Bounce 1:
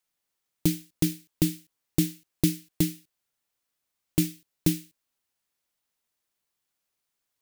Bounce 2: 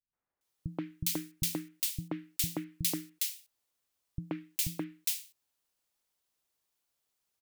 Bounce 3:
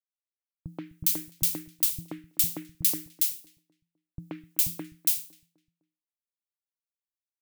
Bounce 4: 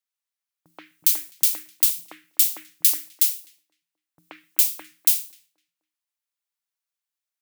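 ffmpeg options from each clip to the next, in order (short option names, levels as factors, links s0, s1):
-filter_complex "[0:a]acrossover=split=750|1600[s0][s1][s2];[s0]acompressor=threshold=0.0282:ratio=6[s3];[s3][s1][s2]amix=inputs=3:normalize=0,acrossover=split=190|1900[s4][s5][s6];[s5]adelay=130[s7];[s6]adelay=410[s8];[s4][s7][s8]amix=inputs=3:normalize=0"
-filter_complex "[0:a]crystalizer=i=1.5:c=0,agate=range=0.0224:threshold=0.00178:ratio=3:detection=peak,asplit=2[s0][s1];[s1]adelay=254,lowpass=f=1300:p=1,volume=0.133,asplit=2[s2][s3];[s3]adelay=254,lowpass=f=1300:p=1,volume=0.43,asplit=2[s4][s5];[s5]adelay=254,lowpass=f=1300:p=1,volume=0.43,asplit=2[s6][s7];[s7]adelay=254,lowpass=f=1300:p=1,volume=0.43[s8];[s0][s2][s4][s6][s8]amix=inputs=5:normalize=0,volume=0.794"
-af "highpass=900,volume=2.11"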